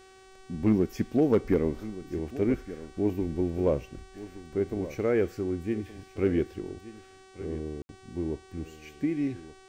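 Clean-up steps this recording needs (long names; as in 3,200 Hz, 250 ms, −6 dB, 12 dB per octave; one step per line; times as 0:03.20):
clipped peaks rebuilt −15 dBFS
hum removal 379.9 Hz, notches 25
ambience match 0:07.82–0:07.89
echo removal 1,172 ms −15.5 dB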